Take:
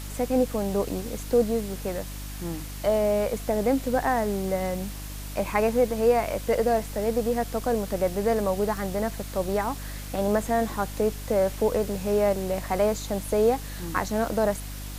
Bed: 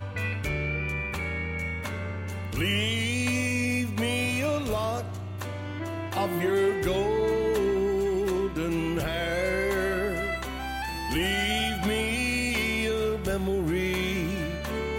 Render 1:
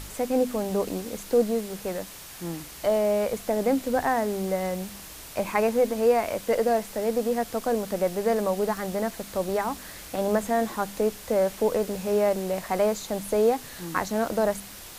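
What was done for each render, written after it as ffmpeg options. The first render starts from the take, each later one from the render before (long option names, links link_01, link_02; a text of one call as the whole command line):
ffmpeg -i in.wav -af "bandreject=frequency=50:width_type=h:width=4,bandreject=frequency=100:width_type=h:width=4,bandreject=frequency=150:width_type=h:width=4,bandreject=frequency=200:width_type=h:width=4,bandreject=frequency=250:width_type=h:width=4,bandreject=frequency=300:width_type=h:width=4" out.wav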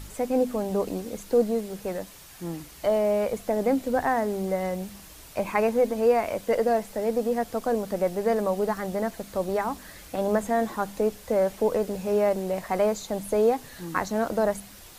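ffmpeg -i in.wav -af "afftdn=noise_reduction=6:noise_floor=-43" out.wav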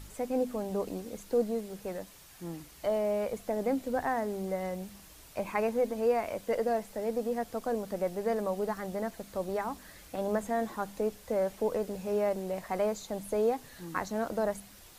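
ffmpeg -i in.wav -af "volume=-6.5dB" out.wav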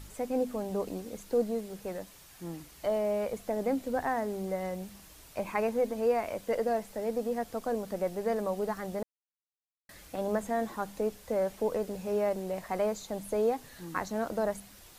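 ffmpeg -i in.wav -filter_complex "[0:a]asplit=3[link_01][link_02][link_03];[link_01]atrim=end=9.03,asetpts=PTS-STARTPTS,afade=type=out:start_time=9.026:duration=0.004:curve=hsin[link_04];[link_02]atrim=start=9.03:end=9.89,asetpts=PTS-STARTPTS,volume=0[link_05];[link_03]atrim=start=9.89,asetpts=PTS-STARTPTS,afade=type=in:duration=0.004:curve=hsin[link_06];[link_04][link_05][link_06]concat=n=3:v=0:a=1" out.wav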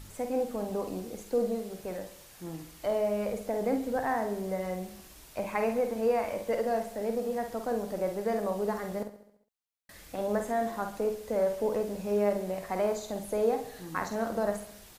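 ffmpeg -i in.wav -filter_complex "[0:a]asplit=2[link_01][link_02];[link_02]adelay=49,volume=-7dB[link_03];[link_01][link_03]amix=inputs=2:normalize=0,aecho=1:1:68|136|204|272|340|408:0.224|0.125|0.0702|0.0393|0.022|0.0123" out.wav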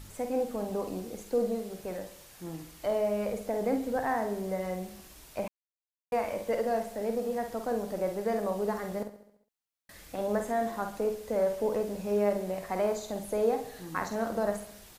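ffmpeg -i in.wav -filter_complex "[0:a]asplit=3[link_01][link_02][link_03];[link_01]atrim=end=5.48,asetpts=PTS-STARTPTS,afade=type=out:start_time=5.476:duration=0.004:curve=hsin[link_04];[link_02]atrim=start=5.48:end=6.12,asetpts=PTS-STARTPTS,volume=0[link_05];[link_03]atrim=start=6.12,asetpts=PTS-STARTPTS,afade=type=in:duration=0.004:curve=hsin[link_06];[link_04][link_05][link_06]concat=n=3:v=0:a=1" out.wav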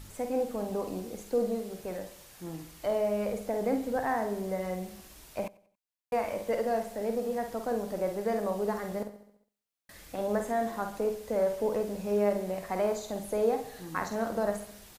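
ffmpeg -i in.wav -af "aecho=1:1:92|184|276:0.0708|0.0276|0.0108" out.wav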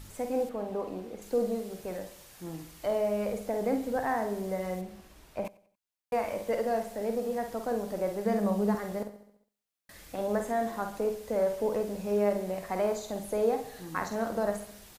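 ffmpeg -i in.wav -filter_complex "[0:a]asettb=1/sr,asplit=3[link_01][link_02][link_03];[link_01]atrim=end=0.494[link_04];[link_02]atrim=start=0.49:end=1.22,asetpts=PTS-STARTPTS,afade=type=in:duration=0.004:curve=qsin,afade=type=out:start_time=0.726:duration=0.004:curve=qsin,bass=frequency=250:gain=-5,treble=frequency=4000:gain=-12[link_05];[link_03]atrim=start=1.216[link_06];[link_04][link_05]acrossfade=duration=0.004:curve1=hsin:curve2=qsin[link_07];[link_07][link_06]acrossfade=duration=0.004:curve1=qsin:curve2=hsin,asettb=1/sr,asplit=3[link_08][link_09][link_10];[link_08]atrim=end=4.814[link_11];[link_09]atrim=start=4.81:end=5.45,asetpts=PTS-STARTPTS,afade=type=in:duration=0.004:curve=qsin,afade=type=out:start_time=0.636:duration=0.004:curve=qsin,highshelf=frequency=3700:gain=-11[link_12];[link_10]atrim=start=5.446[link_13];[link_11][link_12]acrossfade=duration=0.004:curve1=hsin:curve2=qsin[link_14];[link_14][link_13]acrossfade=duration=0.004:curve1=qsin:curve2=hsin,asettb=1/sr,asplit=3[link_15][link_16][link_17];[link_15]atrim=end=8.254[link_18];[link_16]atrim=start=8.25:end=8.75,asetpts=PTS-STARTPTS,afade=type=in:duration=0.004:curve=qsin,afade=type=out:start_time=0.496:duration=0.004:curve=qsin,equalizer=frequency=200:width=5.8:gain=11[link_19];[link_17]atrim=start=8.746[link_20];[link_18][link_19]acrossfade=duration=0.004:curve1=hsin:curve2=qsin[link_21];[link_21][link_20]acrossfade=duration=0.004:curve1=qsin:curve2=hsin" out.wav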